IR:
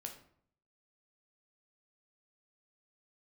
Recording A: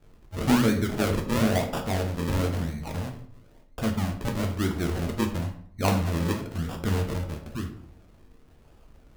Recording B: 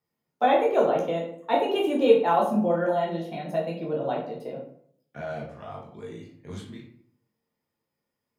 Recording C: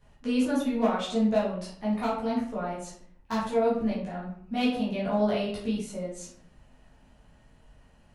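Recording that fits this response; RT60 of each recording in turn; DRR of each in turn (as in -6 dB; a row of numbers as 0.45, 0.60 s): A; 0.60, 0.60, 0.60 s; 2.5, -3.5, -8.5 dB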